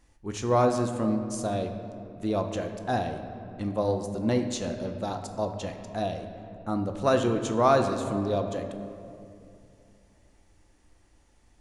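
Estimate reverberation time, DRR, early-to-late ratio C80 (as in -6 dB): 2.5 s, 5.0 dB, 8.5 dB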